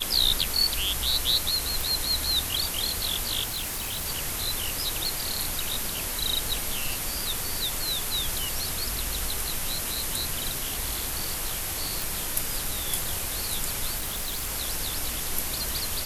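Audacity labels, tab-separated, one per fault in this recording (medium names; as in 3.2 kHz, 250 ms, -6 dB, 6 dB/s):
1.810000	1.810000	pop
3.440000	4.070000	clipped -27.5 dBFS
5.060000	5.060000	pop
12.020000	12.020000	pop
13.970000	14.510000	clipped -26.5 dBFS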